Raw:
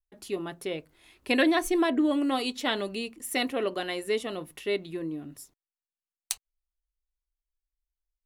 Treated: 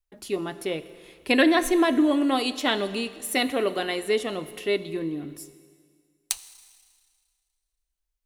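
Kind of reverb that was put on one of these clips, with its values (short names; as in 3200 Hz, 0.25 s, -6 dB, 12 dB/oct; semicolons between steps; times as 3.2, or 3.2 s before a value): Schroeder reverb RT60 1.9 s, combs from 27 ms, DRR 13.5 dB; gain +4 dB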